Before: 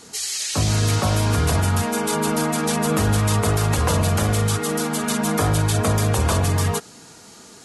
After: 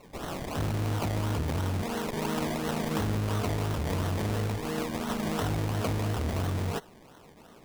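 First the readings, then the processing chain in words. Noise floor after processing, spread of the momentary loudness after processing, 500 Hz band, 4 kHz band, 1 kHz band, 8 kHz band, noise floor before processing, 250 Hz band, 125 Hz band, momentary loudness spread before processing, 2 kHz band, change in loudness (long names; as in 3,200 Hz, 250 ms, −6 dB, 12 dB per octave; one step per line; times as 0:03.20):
−53 dBFS, 3 LU, −9.0 dB, −12.5 dB, −10.5 dB, −18.5 dB, −45 dBFS, −8.5 dB, −10.0 dB, 3 LU, −10.5 dB, −10.5 dB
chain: sample-and-hold swept by an LFO 26×, swing 60% 2.9 Hz
saturating transformer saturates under 230 Hz
level −8.5 dB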